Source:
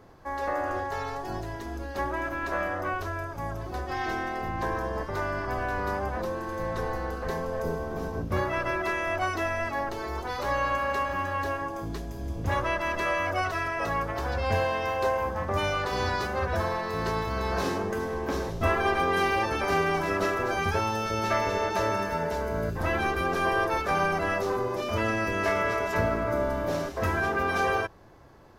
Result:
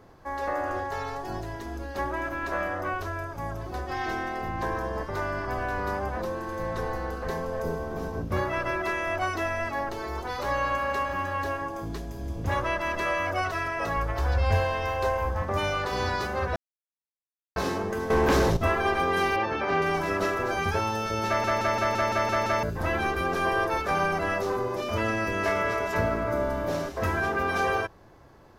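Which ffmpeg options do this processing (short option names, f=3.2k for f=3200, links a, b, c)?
-filter_complex "[0:a]asplit=3[a][b][c];[a]afade=t=out:st=13.96:d=0.02[d];[b]asubboost=boost=4.5:cutoff=80,afade=t=in:st=13.96:d=0.02,afade=t=out:st=15.41:d=0.02[e];[c]afade=t=in:st=15.41:d=0.02[f];[d][e][f]amix=inputs=3:normalize=0,asettb=1/sr,asplit=3[g][h][i];[g]atrim=end=18.104[j];[h]atrim=start=18.1:end=18.57,asetpts=PTS-STARTPTS,afade=t=in:d=0.004:c=qsin,afade=t=out:st=0.466:d=0.004:c=qsin,aeval=exprs='0.141*sin(PI/2*2.51*val(0)/0.141)':c=same[k];[i]atrim=start=18.566[l];[j][k]acrossfade=d=0.004:c1=hsin:c2=qsin[m];[m][l]acrossfade=d=0.004:c1=qsin:c2=hsin,asettb=1/sr,asplit=3[n][o][p];[n]atrim=end=19.364[q];[o]atrim=start=19.36:end=19.82,asetpts=PTS-STARTPTS,afade=t=in:d=0.004:c=qsin,afade=t=out:st=0.456:d=0.004:c=qsin,highpass=100,lowpass=3.5k[r];[p]atrim=start=19.816[s];[q][r]acrossfade=d=0.004:c1=hsin:c2=qsin[t];[t][s]acrossfade=d=0.004:c1=qsin:c2=hsin,asplit=11[u][v][w][x][y][z][aa][ab][ac][ad][ae];[u]atrim=end=16.56,asetpts=PTS-STARTPTS,afade=t=out:st=16.556:d=0.004:c=hsin[af];[v]atrim=start=16.56:end=17.56,asetpts=PTS-STARTPTS,volume=0[ag];[w]atrim=start=17.56:end=21.442,asetpts=PTS-STARTPTS,afade=t=in:d=0.004:c=hsin[ah];[x]atrim=start=21.268:end=21.442[ai];[y]atrim=start=21.268:end=21.442[aj];[z]atrim=start=21.268:end=21.442[ak];[aa]atrim=start=21.268:end=21.442[al];[ab]atrim=start=21.268:end=21.442[am];[ac]atrim=start=21.268:end=21.442[an];[ad]atrim=start=21.268:end=21.442[ao];[ae]atrim=start=22.628[ap];[af][ag][ah]concat=n=3:v=0:a=1[aq];[aq][ai]acrossfade=d=0.004:c1=hsin:c2=hsin[ar];[ar][aj]acrossfade=d=0.004:c1=hsin:c2=hsin[as];[as][ak]acrossfade=d=0.004:c1=hsin:c2=hsin[at];[at][al]acrossfade=d=0.004:c1=hsin:c2=hsin[au];[au][am]acrossfade=d=0.004:c1=hsin:c2=hsin[av];[av][an]acrossfade=d=0.004:c1=hsin:c2=hsin[aw];[aw][ao]acrossfade=d=0.004:c1=hsin:c2=hsin[ax];[ax][ap]acrossfade=d=0.004:c1=hsin:c2=hsin"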